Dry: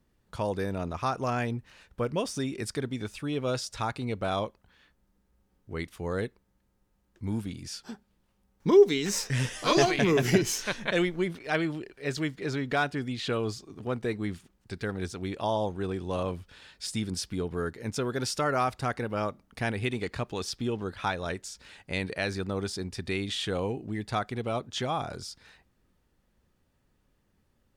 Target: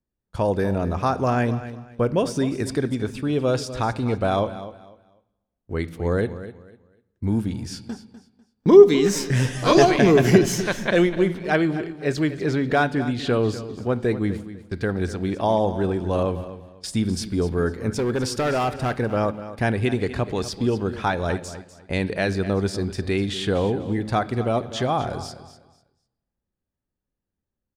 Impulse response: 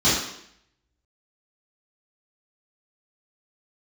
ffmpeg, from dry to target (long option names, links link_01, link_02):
-filter_complex "[0:a]acrossover=split=940[link_01][link_02];[link_01]acontrast=68[link_03];[link_02]equalizer=frequency=1600:width=5.7:gain=4.5[link_04];[link_03][link_04]amix=inputs=2:normalize=0,agate=range=-24dB:threshold=-40dB:ratio=16:detection=peak,asettb=1/sr,asplit=3[link_05][link_06][link_07];[link_05]atrim=end=17.934[link_08];[link_06]atrim=start=17.93:end=18.98,asetpts=PTS-STARTPTS,afade=type=in:duration=0.004:curve=qsin,afade=type=out:start_time=1.046:duration=0.004:curve=qsin,volume=21.5dB,asoftclip=hard,volume=-21.5dB[link_09];[link_07]atrim=start=18.976[link_10];[link_08][link_09]acrossfade=duration=0.004:curve1=hsin:curve2=qsin[link_11];[link_11][link_10]acrossfade=duration=0.004:curve1=qsin:curve2=hsin,aecho=1:1:248|496|744:0.2|0.0499|0.0125,asplit=2[link_12][link_13];[1:a]atrim=start_sample=2205,asetrate=29547,aresample=44100[link_14];[link_13][link_14]afir=irnorm=-1:irlink=0,volume=-38dB[link_15];[link_12][link_15]amix=inputs=2:normalize=0,volume=2.5dB"